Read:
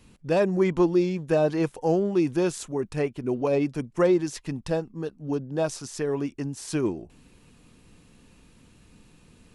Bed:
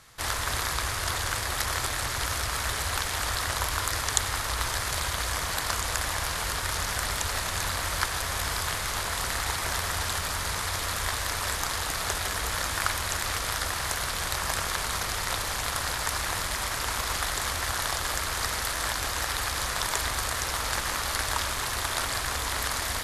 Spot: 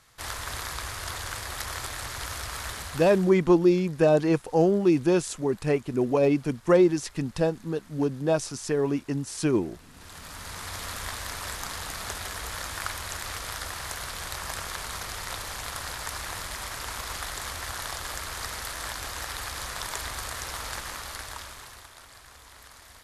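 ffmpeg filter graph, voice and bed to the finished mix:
ffmpeg -i stem1.wav -i stem2.wav -filter_complex "[0:a]adelay=2700,volume=2dB[link_01];[1:a]volume=15dB,afade=type=out:start_time=2.67:duration=0.68:silence=0.0944061,afade=type=in:start_time=9.92:duration=0.9:silence=0.0944061,afade=type=out:start_time=20.62:duration=1.3:silence=0.177828[link_02];[link_01][link_02]amix=inputs=2:normalize=0" out.wav

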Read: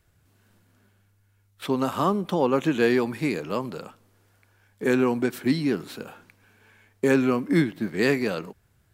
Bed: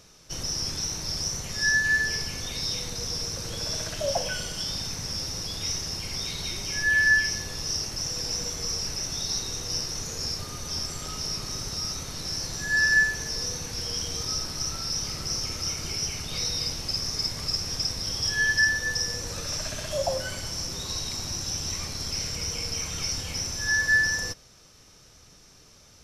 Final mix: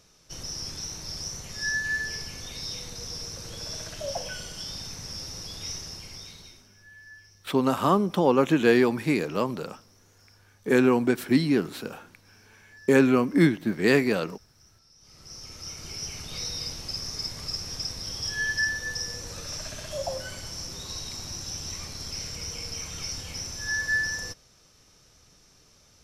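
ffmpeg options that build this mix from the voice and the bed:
ffmpeg -i stem1.wav -i stem2.wav -filter_complex "[0:a]adelay=5850,volume=1.5dB[link_01];[1:a]volume=19dB,afade=type=out:start_time=5.74:duration=0.95:silence=0.0668344,afade=type=in:start_time=14.98:duration=1.22:silence=0.0595662[link_02];[link_01][link_02]amix=inputs=2:normalize=0" out.wav

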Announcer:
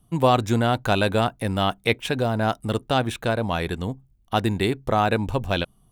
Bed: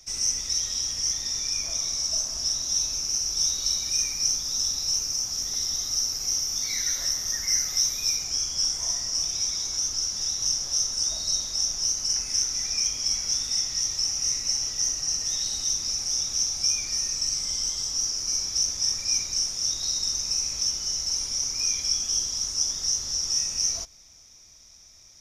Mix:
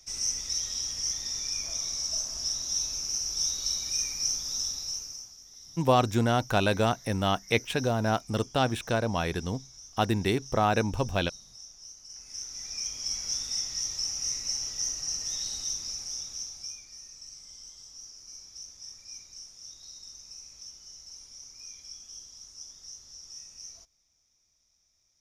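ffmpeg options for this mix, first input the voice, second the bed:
ffmpeg -i stem1.wav -i stem2.wav -filter_complex "[0:a]adelay=5650,volume=-4dB[link_01];[1:a]volume=11.5dB,afade=type=out:start_time=4.54:duration=0.82:silence=0.141254,afade=type=in:start_time=12.09:duration=1.19:silence=0.158489,afade=type=out:start_time=15.5:duration=1.36:silence=0.199526[link_02];[link_01][link_02]amix=inputs=2:normalize=0" out.wav

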